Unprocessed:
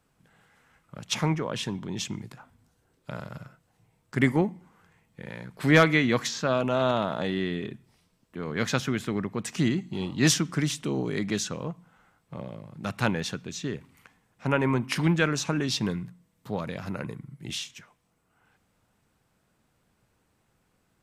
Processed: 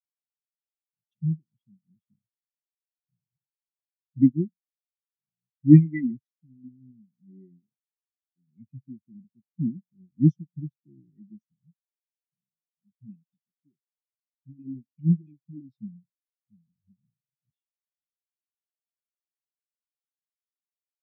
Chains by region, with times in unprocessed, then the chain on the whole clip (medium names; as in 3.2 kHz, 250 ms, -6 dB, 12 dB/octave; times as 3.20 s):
12.35–15.46 s: high-pass 110 Hz 24 dB/octave + bass shelf 270 Hz -2.5 dB + phase dispersion highs, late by 84 ms, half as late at 940 Hz
whole clip: Chebyshev band-stop 380–1900 Hz, order 5; bass shelf 93 Hz +8.5 dB; spectral contrast expander 4:1; trim +7 dB